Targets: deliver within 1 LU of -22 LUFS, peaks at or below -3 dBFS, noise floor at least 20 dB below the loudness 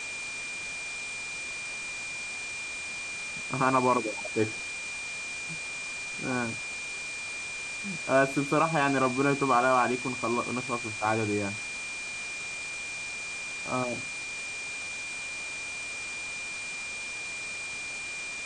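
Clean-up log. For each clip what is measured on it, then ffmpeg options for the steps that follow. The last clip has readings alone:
steady tone 2400 Hz; tone level -35 dBFS; noise floor -37 dBFS; noise floor target -51 dBFS; loudness -30.5 LUFS; peak -10.5 dBFS; loudness target -22.0 LUFS
-> -af "bandreject=f=2.4k:w=30"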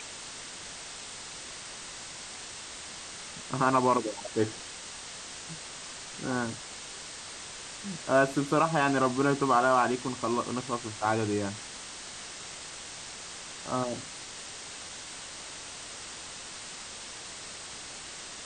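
steady tone none; noise floor -43 dBFS; noise floor target -53 dBFS
-> -af "afftdn=nr=10:nf=-43"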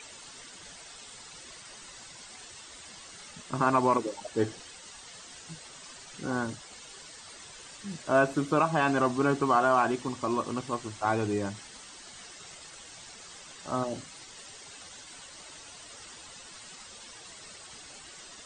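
noise floor -49 dBFS; loudness -28.5 LUFS; peak -10.5 dBFS; loudness target -22.0 LUFS
-> -af "volume=6.5dB"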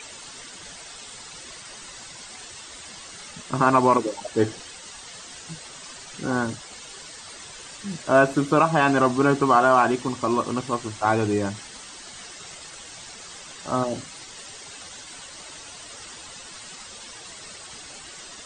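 loudness -22.0 LUFS; peak -4.0 dBFS; noise floor -42 dBFS

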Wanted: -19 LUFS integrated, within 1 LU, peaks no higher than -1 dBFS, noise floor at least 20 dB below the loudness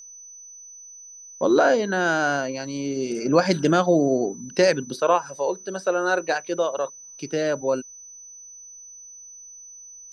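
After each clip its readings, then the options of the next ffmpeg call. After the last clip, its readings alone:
steady tone 6000 Hz; tone level -41 dBFS; loudness -23.0 LUFS; peak -6.0 dBFS; loudness target -19.0 LUFS
-> -af "bandreject=f=6k:w=30"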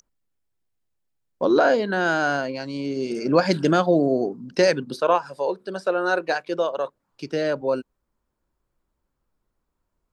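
steady tone none; loudness -23.0 LUFS; peak -6.0 dBFS; loudness target -19.0 LUFS
-> -af "volume=4dB"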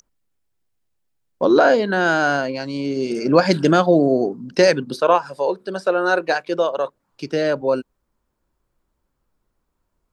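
loudness -19.0 LUFS; peak -2.0 dBFS; noise floor -74 dBFS

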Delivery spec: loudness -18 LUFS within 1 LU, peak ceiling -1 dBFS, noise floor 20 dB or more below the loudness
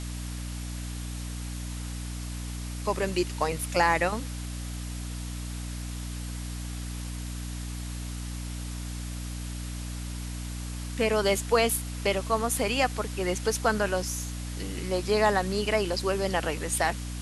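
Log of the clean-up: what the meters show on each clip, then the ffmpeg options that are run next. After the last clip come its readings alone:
hum 60 Hz; harmonics up to 300 Hz; hum level -33 dBFS; noise floor -36 dBFS; noise floor target -50 dBFS; loudness -30.0 LUFS; peak -8.5 dBFS; loudness target -18.0 LUFS
-> -af "bandreject=f=60:t=h:w=6,bandreject=f=120:t=h:w=6,bandreject=f=180:t=h:w=6,bandreject=f=240:t=h:w=6,bandreject=f=300:t=h:w=6"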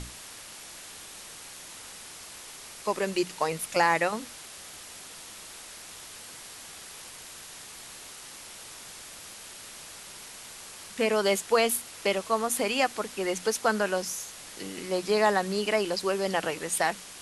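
hum none; noise floor -45 dBFS; noise floor target -48 dBFS
-> -af "afftdn=nr=6:nf=-45"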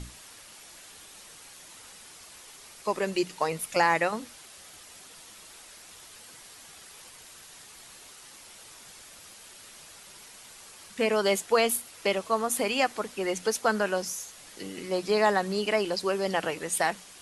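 noise floor -50 dBFS; loudness -27.5 LUFS; peak -9.5 dBFS; loudness target -18.0 LUFS
-> -af "volume=9.5dB,alimiter=limit=-1dB:level=0:latency=1"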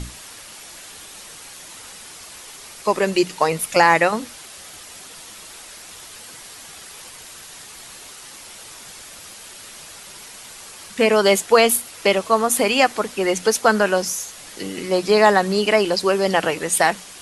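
loudness -18.0 LUFS; peak -1.0 dBFS; noise floor -40 dBFS

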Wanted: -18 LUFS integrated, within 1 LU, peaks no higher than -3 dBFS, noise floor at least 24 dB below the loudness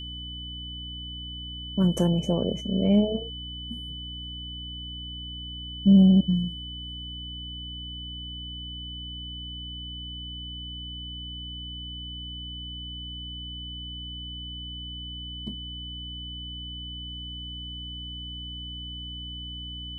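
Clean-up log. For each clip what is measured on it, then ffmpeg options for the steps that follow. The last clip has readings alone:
hum 60 Hz; harmonics up to 300 Hz; hum level -38 dBFS; steady tone 3000 Hz; tone level -37 dBFS; loudness -30.0 LUFS; peak -8.5 dBFS; loudness target -18.0 LUFS
-> -af "bandreject=f=60:t=h:w=6,bandreject=f=120:t=h:w=6,bandreject=f=180:t=h:w=6,bandreject=f=240:t=h:w=6,bandreject=f=300:t=h:w=6"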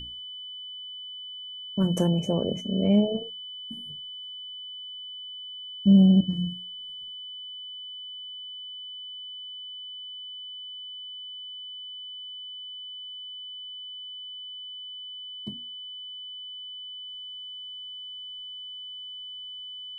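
hum none; steady tone 3000 Hz; tone level -37 dBFS
-> -af "bandreject=f=3k:w=30"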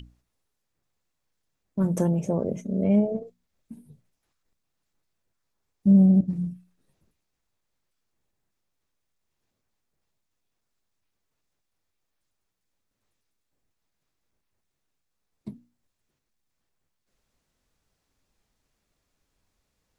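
steady tone none; loudness -23.0 LUFS; peak -9.0 dBFS; loudness target -18.0 LUFS
-> -af "volume=5dB"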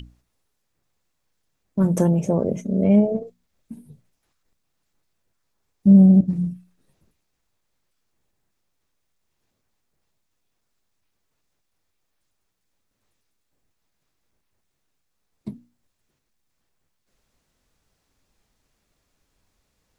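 loudness -18.0 LUFS; peak -4.0 dBFS; noise floor -75 dBFS

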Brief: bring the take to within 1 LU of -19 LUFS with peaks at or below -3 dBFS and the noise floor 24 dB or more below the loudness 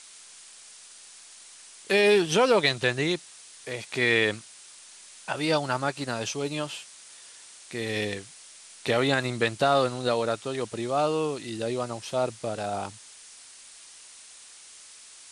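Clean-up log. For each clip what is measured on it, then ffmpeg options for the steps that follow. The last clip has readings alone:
noise floor -49 dBFS; noise floor target -51 dBFS; loudness -26.5 LUFS; peak -8.5 dBFS; loudness target -19.0 LUFS
-> -af "afftdn=nr=6:nf=-49"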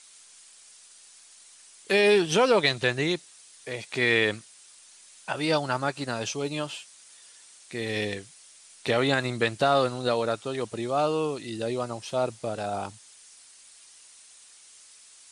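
noise floor -53 dBFS; loudness -26.5 LUFS; peak -8.5 dBFS; loudness target -19.0 LUFS
-> -af "volume=7.5dB,alimiter=limit=-3dB:level=0:latency=1"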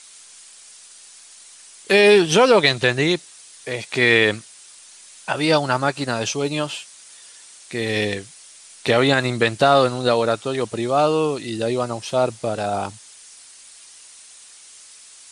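loudness -19.0 LUFS; peak -3.0 dBFS; noise floor -45 dBFS

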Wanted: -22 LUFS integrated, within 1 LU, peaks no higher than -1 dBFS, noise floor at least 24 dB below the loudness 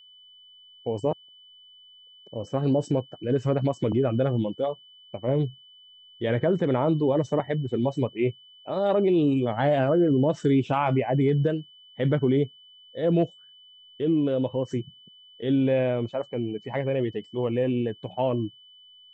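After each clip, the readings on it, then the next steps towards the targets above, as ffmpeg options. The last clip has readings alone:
steady tone 3000 Hz; tone level -50 dBFS; loudness -25.5 LUFS; peak -12.5 dBFS; loudness target -22.0 LUFS
-> -af "bandreject=f=3k:w=30"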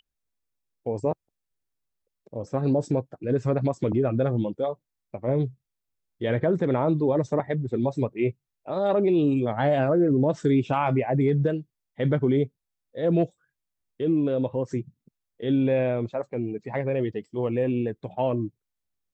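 steady tone none; loudness -25.5 LUFS; peak -12.5 dBFS; loudness target -22.0 LUFS
-> -af "volume=3.5dB"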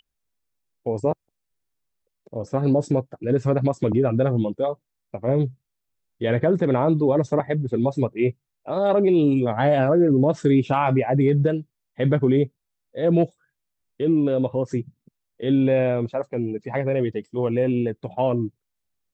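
loudness -22.0 LUFS; peak -9.0 dBFS; noise floor -80 dBFS

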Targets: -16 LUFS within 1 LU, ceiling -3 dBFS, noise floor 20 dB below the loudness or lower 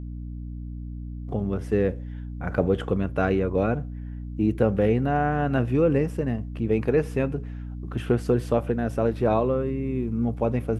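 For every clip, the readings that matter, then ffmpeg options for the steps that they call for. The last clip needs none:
hum 60 Hz; harmonics up to 300 Hz; hum level -32 dBFS; loudness -25.0 LUFS; peak -7.0 dBFS; loudness target -16.0 LUFS
-> -af "bandreject=f=60:t=h:w=6,bandreject=f=120:t=h:w=6,bandreject=f=180:t=h:w=6,bandreject=f=240:t=h:w=6,bandreject=f=300:t=h:w=6"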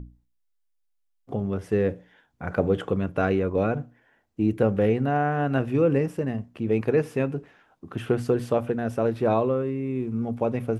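hum none; loudness -25.5 LUFS; peak -7.5 dBFS; loudness target -16.0 LUFS
-> -af "volume=9.5dB,alimiter=limit=-3dB:level=0:latency=1"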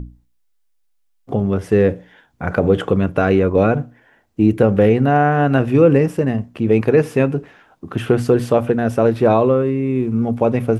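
loudness -16.5 LUFS; peak -3.0 dBFS; noise floor -62 dBFS

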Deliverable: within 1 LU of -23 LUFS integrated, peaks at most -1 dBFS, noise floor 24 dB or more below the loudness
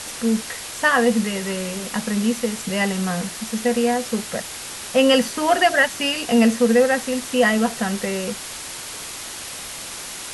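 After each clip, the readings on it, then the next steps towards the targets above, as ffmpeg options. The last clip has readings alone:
noise floor -34 dBFS; noise floor target -45 dBFS; loudness -21.0 LUFS; peak -4.5 dBFS; loudness target -23.0 LUFS
-> -af "afftdn=nr=11:nf=-34"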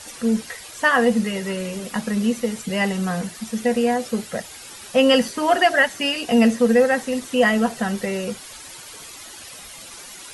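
noise floor -40 dBFS; noise floor target -45 dBFS
-> -af "afftdn=nr=6:nf=-40"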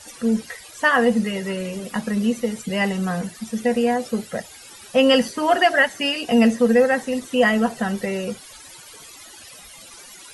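noise floor -43 dBFS; noise floor target -45 dBFS
-> -af "afftdn=nr=6:nf=-43"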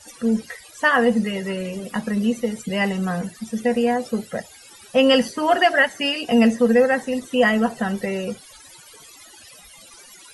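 noise floor -46 dBFS; loudness -20.5 LUFS; peak -4.5 dBFS; loudness target -23.0 LUFS
-> -af "volume=-2.5dB"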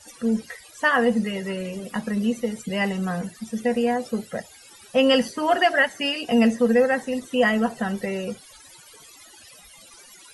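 loudness -23.0 LUFS; peak -7.0 dBFS; noise floor -49 dBFS

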